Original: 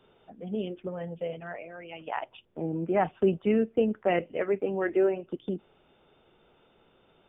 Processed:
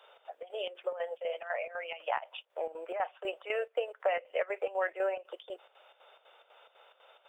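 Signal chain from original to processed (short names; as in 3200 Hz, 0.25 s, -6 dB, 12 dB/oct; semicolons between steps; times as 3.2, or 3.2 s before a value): elliptic high-pass 540 Hz, stop band 60 dB; compressor 4:1, threshold -36 dBFS, peak gain reduction 12.5 dB; chopper 4 Hz, depth 65%, duty 70%; gain +7.5 dB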